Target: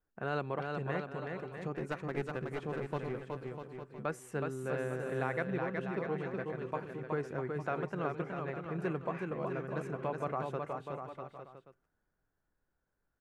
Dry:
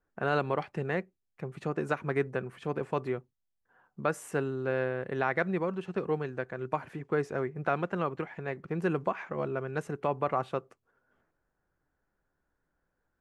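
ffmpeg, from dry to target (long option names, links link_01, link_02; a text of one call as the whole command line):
ffmpeg -i in.wav -filter_complex "[0:a]lowshelf=frequency=160:gain=4.5,asplit=3[link_01][link_02][link_03];[link_01]afade=type=out:start_time=1.74:duration=0.02[link_04];[link_02]aeval=exprs='clip(val(0),-1,0.0335)':channel_layout=same,afade=type=in:start_time=1.74:duration=0.02,afade=type=out:start_time=4.04:duration=0.02[link_05];[link_03]afade=type=in:start_time=4.04:duration=0.02[link_06];[link_04][link_05][link_06]amix=inputs=3:normalize=0,aecho=1:1:370|647.5|855.6|1012|1129:0.631|0.398|0.251|0.158|0.1,volume=-7.5dB" out.wav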